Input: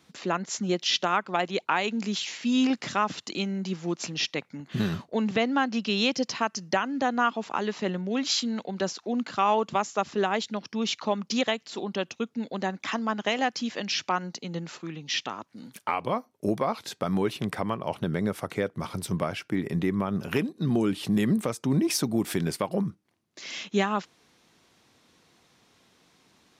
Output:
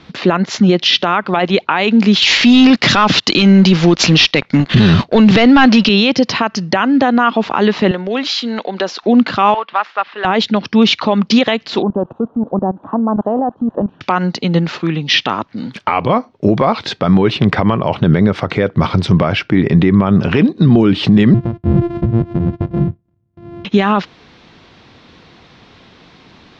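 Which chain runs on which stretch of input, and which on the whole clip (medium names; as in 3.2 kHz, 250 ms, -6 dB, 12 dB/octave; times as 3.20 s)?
2.22–5.89 s: treble shelf 2.7 kHz +8.5 dB + waveshaping leveller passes 2
7.91–9.03 s: high-pass 380 Hz + compression 2:1, threshold -36 dBFS
9.54–10.25 s: CVSD coder 64 kbps + high-pass 1.2 kHz + distance through air 390 m
11.82–14.01 s: zero-crossing glitches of -24 dBFS + inverse Chebyshev low-pass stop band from 2 kHz + level held to a coarse grid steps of 17 dB
21.34–23.65 s: sorted samples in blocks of 128 samples + band-pass filter 110 Hz, Q 1.3 + careless resampling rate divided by 4×, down none, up hold
whole clip: low-pass 4.4 kHz 24 dB/octave; bass shelf 97 Hz +10 dB; loudness maximiser +19.5 dB; trim -1 dB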